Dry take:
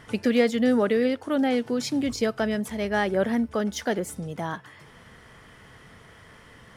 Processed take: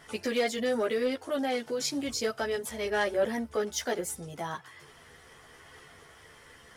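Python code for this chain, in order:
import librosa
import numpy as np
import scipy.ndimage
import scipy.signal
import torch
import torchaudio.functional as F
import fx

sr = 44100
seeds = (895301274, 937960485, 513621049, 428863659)

y = fx.chorus_voices(x, sr, voices=6, hz=0.72, base_ms=13, depth_ms=1.6, mix_pct=50)
y = 10.0 ** (-17.5 / 20.0) * np.tanh(y / 10.0 ** (-17.5 / 20.0))
y = fx.bass_treble(y, sr, bass_db=-9, treble_db=6)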